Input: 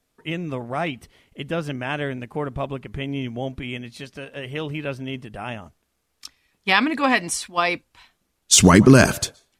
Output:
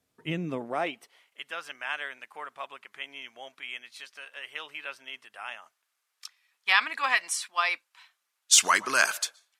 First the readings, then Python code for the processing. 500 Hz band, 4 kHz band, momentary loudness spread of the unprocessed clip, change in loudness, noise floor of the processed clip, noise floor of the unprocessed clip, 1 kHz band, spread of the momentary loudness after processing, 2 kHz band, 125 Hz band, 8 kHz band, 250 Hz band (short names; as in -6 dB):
-15.0 dB, -4.0 dB, 20 LU, -6.5 dB, -80 dBFS, -73 dBFS, -5.5 dB, 20 LU, -3.0 dB, under -20 dB, -4.5 dB, -21.5 dB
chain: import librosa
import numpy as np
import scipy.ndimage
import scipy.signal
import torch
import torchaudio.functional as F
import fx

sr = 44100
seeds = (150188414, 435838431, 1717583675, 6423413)

y = fx.filter_sweep_highpass(x, sr, from_hz=83.0, to_hz=1200.0, start_s=0.12, end_s=1.35, q=1.1)
y = y * 10.0 ** (-4.5 / 20.0)